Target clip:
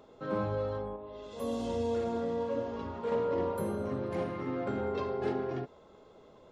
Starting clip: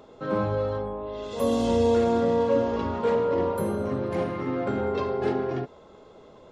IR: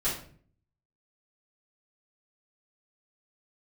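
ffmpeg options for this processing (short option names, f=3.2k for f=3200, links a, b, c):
-filter_complex "[0:a]asettb=1/sr,asplit=3[a][b][c];[a]atrim=end=0.964[d];[b]atrim=start=0.96:end=3.12,asetpts=PTS-STARTPTS,afade=t=in:d=0.004:c=qsin,afade=t=out:st=2.156:d=0.004:c=qsin,flanger=delay=9.9:depth=3.6:regen=-68:speed=1.1:shape=sinusoidal[e];[c]atrim=start=3.116[f];[d][e]acrossfade=d=0.004:c1=hsin:c2=qsin[g];[g][f]acrossfade=d=0.004:c1=qsin:c2=hsin,volume=-6.5dB"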